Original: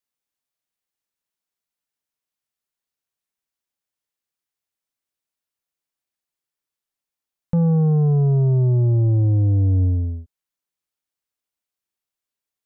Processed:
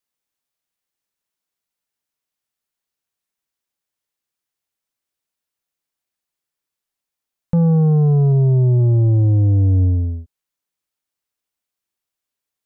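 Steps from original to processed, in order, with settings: 8.32–8.78 s: low-pass 1 kHz -> 1 kHz 12 dB/octave; trim +3 dB

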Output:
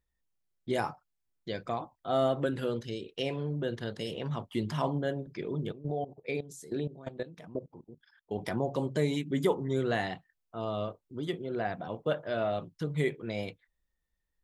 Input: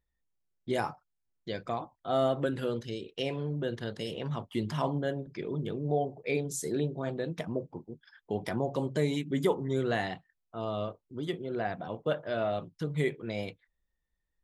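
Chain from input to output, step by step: 5.72–8.38 s: level held to a coarse grid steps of 16 dB

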